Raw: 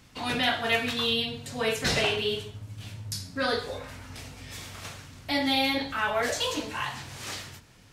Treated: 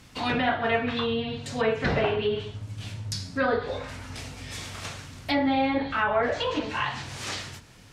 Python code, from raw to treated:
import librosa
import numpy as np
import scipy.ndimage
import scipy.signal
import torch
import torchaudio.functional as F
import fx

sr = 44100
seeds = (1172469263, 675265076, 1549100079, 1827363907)

y = fx.env_lowpass_down(x, sr, base_hz=1500.0, full_db=-23.5)
y = F.gain(torch.from_numpy(y), 4.0).numpy()